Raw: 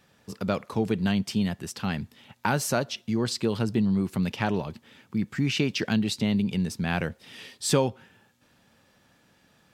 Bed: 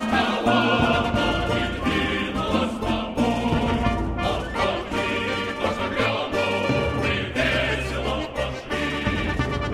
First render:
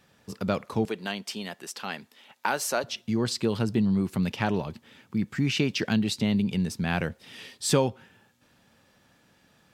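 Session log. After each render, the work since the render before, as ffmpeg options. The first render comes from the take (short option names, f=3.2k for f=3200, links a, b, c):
-filter_complex "[0:a]asettb=1/sr,asplit=3[a][b][c];[a]atrim=end=0.854[d];[b]atrim=start=0.85:end=2.84,asetpts=PTS-STARTPTS,afade=t=in:d=0.004:c=qsin,afade=t=out:st=1.986:d=0.004:c=qsin,highpass=420[e];[c]atrim=start=2.836[f];[d][e]acrossfade=d=0.004:c1=hsin:c2=qsin[g];[g][f]acrossfade=d=0.004:c1=qsin:c2=hsin"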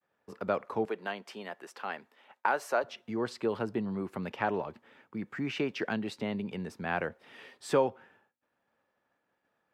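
-filter_complex "[0:a]agate=range=-33dB:threshold=-53dB:ratio=3:detection=peak,acrossover=split=330 2100:gain=0.178 1 0.141[a][b][c];[a][b][c]amix=inputs=3:normalize=0"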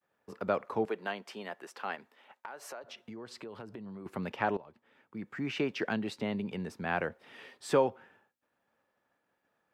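-filter_complex "[0:a]asettb=1/sr,asplit=3[a][b][c];[a]atrim=end=1.954[d];[b]atrim=start=1.95:end=4.06,asetpts=PTS-STARTPTS,afade=t=in:d=0.004:c=qsin,afade=t=out:st=2.106:d=0.004:c=qsin,acompressor=threshold=-42dB:ratio=5:attack=3.2:release=140:knee=1:detection=peak[e];[c]atrim=start=4.056[f];[d][e]acrossfade=d=0.004:c1=hsin:c2=qsin[g];[g][f]acrossfade=d=0.004:c1=qsin:c2=hsin,asplit=2[h][i];[h]atrim=end=4.57,asetpts=PTS-STARTPTS,afade=t=out:st=4.566:d=0.004:c=hsin:silence=0.11885[j];[i]atrim=start=4.57,asetpts=PTS-STARTPTS,afade=t=in:d=1.04:silence=0.11885[k];[j][k]concat=n=2:v=0:a=1"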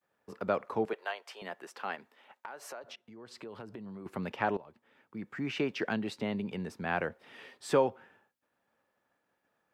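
-filter_complex "[0:a]asettb=1/sr,asplit=3[a][b][c];[a]atrim=end=0.934[d];[b]atrim=start=0.93:end=1.42,asetpts=PTS-STARTPTS,afade=t=in:d=0.004:c=qsin,afade=t=out:st=0.486:d=0.004:c=qsin,highpass=f=490:w=0.5412,highpass=f=490:w=1.3066[e];[c]atrim=start=1.416[f];[d][e]acrossfade=d=0.004:c1=hsin:c2=qsin[g];[g][f]acrossfade=d=0.004:c1=qsin:c2=hsin,asplit=2[h][i];[h]atrim=end=2.96,asetpts=PTS-STARTPTS,afade=t=out:st=2.956:d=0.004:c=hsin:silence=0.211349[j];[i]atrim=start=2.96,asetpts=PTS-STARTPTS,afade=t=in:d=0.53:silence=0.211349[k];[j][k]concat=n=2:v=0:a=1"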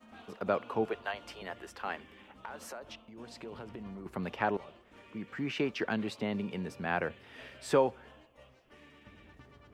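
-filter_complex "[1:a]volume=-32dB[a];[0:a][a]amix=inputs=2:normalize=0"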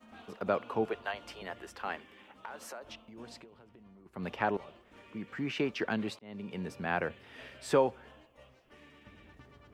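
-filter_complex "[0:a]asettb=1/sr,asplit=3[a][b][c];[a]atrim=end=1.994[d];[b]atrim=start=1.99:end=2.85,asetpts=PTS-STARTPTS,afade=t=in:d=0.004:c=qsin,afade=t=out:st=0.856:d=0.004:c=qsin,lowshelf=f=150:g=-11[e];[c]atrim=start=2.846[f];[d][e]acrossfade=d=0.004:c1=hsin:c2=qsin[g];[g][f]acrossfade=d=0.004:c1=qsin:c2=hsin,asplit=4[h][i][j][k];[h]atrim=end=3.47,asetpts=PTS-STARTPTS,afade=t=out:st=3.35:d=0.12:silence=0.223872[l];[i]atrim=start=3.47:end=4.13,asetpts=PTS-STARTPTS,volume=-13dB[m];[j]atrim=start=4.13:end=6.19,asetpts=PTS-STARTPTS,afade=t=in:d=0.12:silence=0.223872,afade=t=out:st=2.056:d=0.004:c=hsin[n];[k]atrim=start=6.19,asetpts=PTS-STARTPTS,afade=t=in:d=0.46[o];[l][m][n][o]concat=n=4:v=0:a=1"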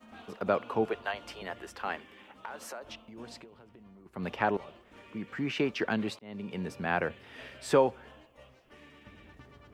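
-af "volume=2.5dB"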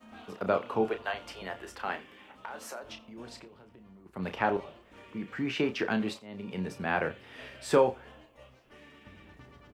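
-filter_complex "[0:a]asplit=2[a][b];[b]adelay=32,volume=-8.5dB[c];[a][c]amix=inputs=2:normalize=0,aecho=1:1:85:0.0708"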